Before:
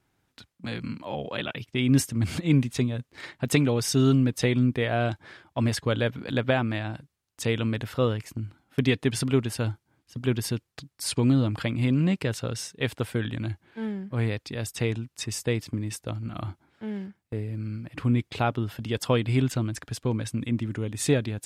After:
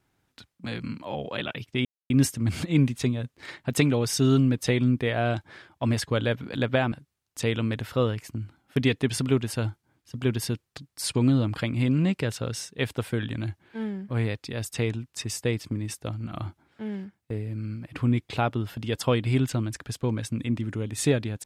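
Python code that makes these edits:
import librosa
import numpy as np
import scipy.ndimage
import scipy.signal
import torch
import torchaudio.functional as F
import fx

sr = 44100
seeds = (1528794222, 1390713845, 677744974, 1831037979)

y = fx.edit(x, sr, fx.insert_silence(at_s=1.85, length_s=0.25),
    fx.cut(start_s=6.67, length_s=0.27), tone=tone)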